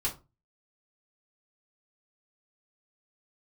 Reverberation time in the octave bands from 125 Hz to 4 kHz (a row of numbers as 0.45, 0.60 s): 0.45, 0.35, 0.30, 0.25, 0.20, 0.20 s